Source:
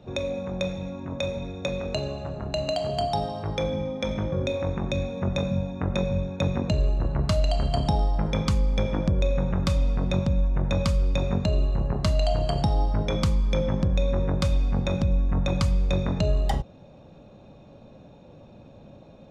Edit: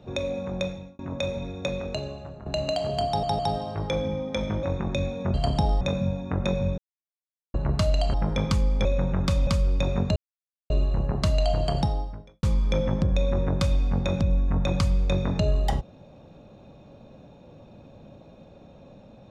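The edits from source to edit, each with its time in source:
0:00.60–0:00.99: fade out
0:01.66–0:02.46: fade out, to −10 dB
0:03.07: stutter 0.16 s, 3 plays
0:04.31–0:04.60: remove
0:06.28–0:07.04: silence
0:07.64–0:08.11: move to 0:05.31
0:08.82–0:09.24: remove
0:09.86–0:10.82: remove
0:11.51: splice in silence 0.54 s
0:12.62–0:13.24: fade out quadratic

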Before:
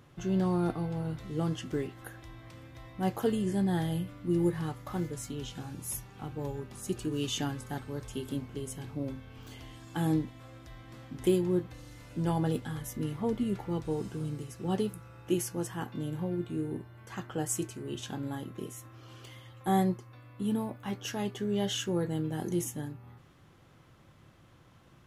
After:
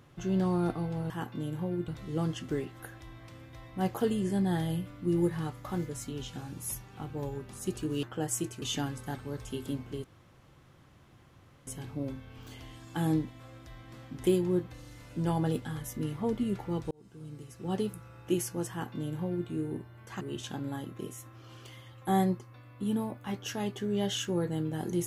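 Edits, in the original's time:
0:08.67: splice in room tone 1.63 s
0:13.91–0:14.92: fade in
0:15.70–0:16.48: duplicate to 0:01.10
0:17.21–0:17.80: move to 0:07.25

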